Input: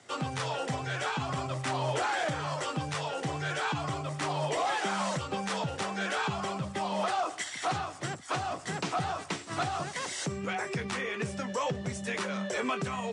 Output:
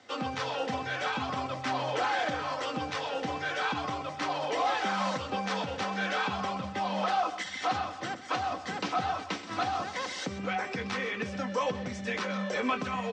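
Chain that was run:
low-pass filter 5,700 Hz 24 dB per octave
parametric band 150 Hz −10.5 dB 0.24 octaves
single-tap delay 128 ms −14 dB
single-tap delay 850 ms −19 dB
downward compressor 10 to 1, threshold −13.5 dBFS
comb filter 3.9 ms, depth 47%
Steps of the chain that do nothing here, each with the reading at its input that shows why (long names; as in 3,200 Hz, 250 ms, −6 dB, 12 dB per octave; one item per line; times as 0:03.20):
downward compressor, threshold −13.5 dBFS: peak of its input −19.5 dBFS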